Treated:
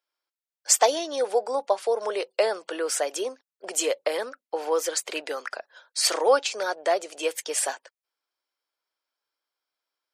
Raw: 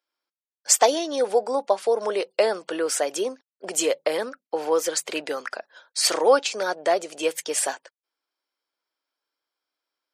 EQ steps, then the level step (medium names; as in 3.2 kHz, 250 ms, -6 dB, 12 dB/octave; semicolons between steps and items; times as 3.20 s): high-pass 370 Hz 12 dB/octave; -1.5 dB